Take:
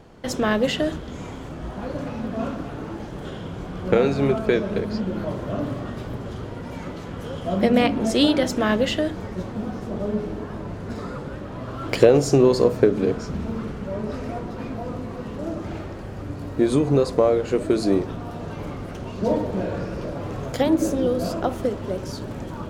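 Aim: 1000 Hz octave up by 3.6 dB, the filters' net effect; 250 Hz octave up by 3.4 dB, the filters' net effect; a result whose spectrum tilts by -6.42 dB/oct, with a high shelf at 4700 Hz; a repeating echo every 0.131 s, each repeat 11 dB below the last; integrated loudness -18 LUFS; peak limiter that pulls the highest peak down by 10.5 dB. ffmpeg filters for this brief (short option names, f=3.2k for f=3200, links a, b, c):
-af "equalizer=f=250:t=o:g=4,equalizer=f=1k:t=o:g=5,highshelf=f=4.7k:g=-7,alimiter=limit=-10.5dB:level=0:latency=1,aecho=1:1:131|262|393:0.282|0.0789|0.0221,volume=6dB"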